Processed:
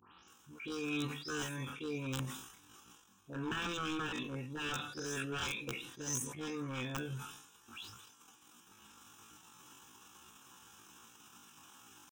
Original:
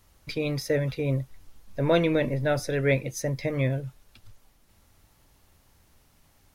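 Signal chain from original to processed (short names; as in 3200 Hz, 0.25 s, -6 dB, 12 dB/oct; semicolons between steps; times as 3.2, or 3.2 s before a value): spectral delay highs late, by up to 0.168 s; transient shaper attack -2 dB, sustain -7 dB; HPF 330 Hz 12 dB/oct; wavefolder -26 dBFS; reverse; compressor 8:1, threshold -45 dBFS, peak gain reduction 15.5 dB; reverse; wrapped overs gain 37 dB; fixed phaser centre 3000 Hz, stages 8; tempo 0.54×; on a send at -19 dB: reverb RT60 0.40 s, pre-delay 3 ms; on the sum: sustainer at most 66 dB/s; gain +12.5 dB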